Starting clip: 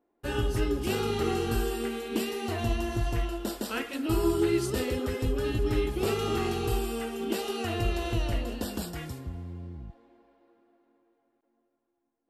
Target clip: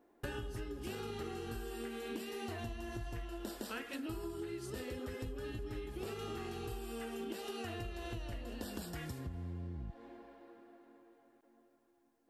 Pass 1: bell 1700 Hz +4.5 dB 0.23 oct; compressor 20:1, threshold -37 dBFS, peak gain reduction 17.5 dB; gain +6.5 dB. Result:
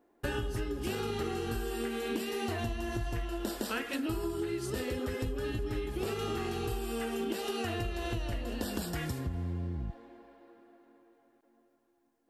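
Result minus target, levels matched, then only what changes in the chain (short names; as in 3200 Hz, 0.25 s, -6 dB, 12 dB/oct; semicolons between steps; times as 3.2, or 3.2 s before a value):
compressor: peak gain reduction -8 dB
change: compressor 20:1, threshold -45.5 dBFS, peak gain reduction 25.5 dB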